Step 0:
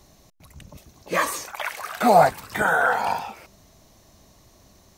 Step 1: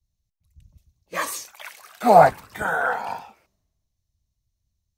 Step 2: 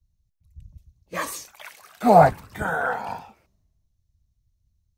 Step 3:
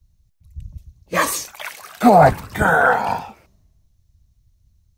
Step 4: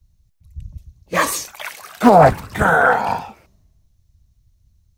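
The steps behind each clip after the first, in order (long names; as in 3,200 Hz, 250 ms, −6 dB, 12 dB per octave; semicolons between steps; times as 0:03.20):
multiband upward and downward expander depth 100%; level −6 dB
low-shelf EQ 280 Hz +11 dB; level −3 dB
boost into a limiter +11.5 dB; level −1 dB
highs frequency-modulated by the lows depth 0.28 ms; level +1 dB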